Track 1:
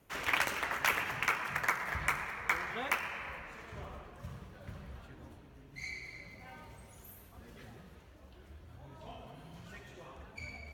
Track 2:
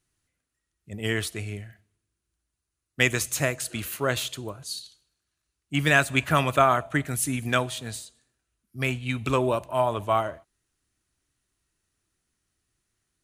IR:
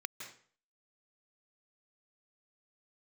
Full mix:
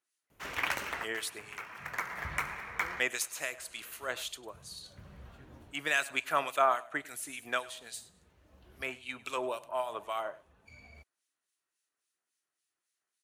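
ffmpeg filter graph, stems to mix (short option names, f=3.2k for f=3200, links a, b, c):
-filter_complex "[0:a]adelay=300,volume=-1.5dB[a];[1:a]highpass=530,acrossover=split=2000[b][c];[b]aeval=exprs='val(0)*(1-0.7/2+0.7/2*cos(2*PI*3.6*n/s))':c=same[d];[c]aeval=exprs='val(0)*(1-0.7/2-0.7/2*cos(2*PI*3.6*n/s))':c=same[e];[d][e]amix=inputs=2:normalize=0,volume=-4dB,asplit=3[f][g][h];[g]volume=-20.5dB[i];[h]apad=whole_len=486635[j];[a][j]sidechaincompress=threshold=-49dB:ratio=12:attack=36:release=798[k];[i]aecho=0:1:101:1[l];[k][f][l]amix=inputs=3:normalize=0"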